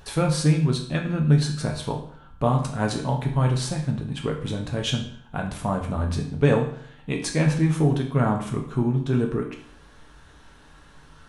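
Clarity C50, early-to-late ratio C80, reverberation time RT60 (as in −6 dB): 7.5 dB, 11.5 dB, 0.60 s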